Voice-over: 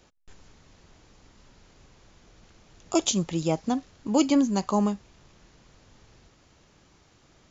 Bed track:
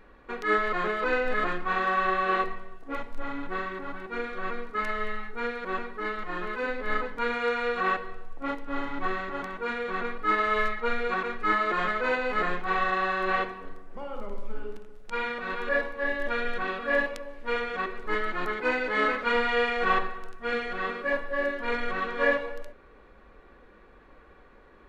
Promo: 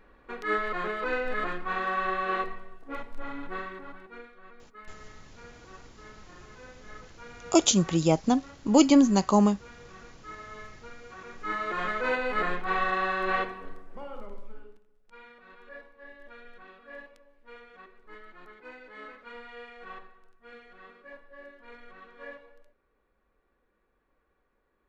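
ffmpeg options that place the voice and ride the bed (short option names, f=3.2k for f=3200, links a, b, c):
-filter_complex "[0:a]adelay=4600,volume=3dB[a];[1:a]volume=14.5dB,afade=t=out:st=3.53:d=0.82:silence=0.16788,afade=t=in:st=11.14:d=0.95:silence=0.125893,afade=t=out:st=13.78:d=1.03:silence=0.112202[b];[a][b]amix=inputs=2:normalize=0"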